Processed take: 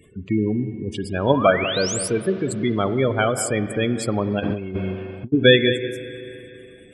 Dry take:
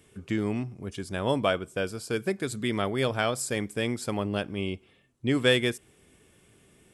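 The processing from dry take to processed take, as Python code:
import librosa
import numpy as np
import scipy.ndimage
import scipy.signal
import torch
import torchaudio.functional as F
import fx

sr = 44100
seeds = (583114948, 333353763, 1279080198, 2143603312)

p1 = fx.level_steps(x, sr, step_db=23)
p2 = x + (p1 * librosa.db_to_amplitude(-3.0))
p3 = fx.spec_paint(p2, sr, seeds[0], shape='rise', start_s=1.33, length_s=0.75, low_hz=870.0, high_hz=11000.0, level_db=-34.0)
p4 = p3 + fx.echo_single(p3, sr, ms=191, db=-12.0, dry=0)
p5 = fx.spec_gate(p4, sr, threshold_db=-15, keep='strong')
p6 = fx.rev_spring(p5, sr, rt60_s=3.2, pass_ms=(37, 42), chirp_ms=60, drr_db=11.0)
p7 = fx.over_compress(p6, sr, threshold_db=-34.0, ratio=-0.5, at=(4.39, 5.32), fade=0.02)
y = p7 * librosa.db_to_amplitude(6.5)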